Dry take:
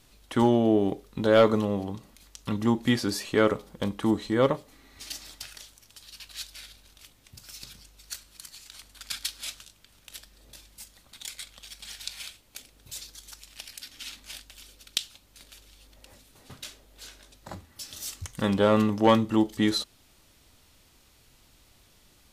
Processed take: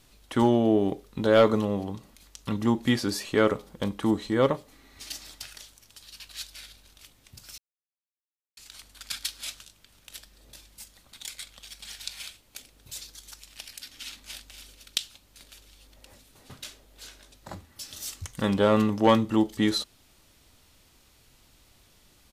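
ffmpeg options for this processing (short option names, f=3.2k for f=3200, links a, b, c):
-filter_complex "[0:a]asplit=2[a][b];[b]afade=t=in:st=14.03:d=0.01,afade=t=out:st=14.5:d=0.01,aecho=0:1:240|480|720|960:0.316228|0.11068|0.0387379|0.0135583[c];[a][c]amix=inputs=2:normalize=0,asplit=3[d][e][f];[d]atrim=end=7.58,asetpts=PTS-STARTPTS,afade=t=out:st=7.576:d=0.004:c=hsin[g];[e]atrim=start=7.58:end=8.57,asetpts=PTS-STARTPTS,volume=0[h];[f]atrim=start=8.57,asetpts=PTS-STARTPTS,afade=t=in:d=0.004:c=hsin[i];[g][h][i]concat=n=3:v=0:a=1"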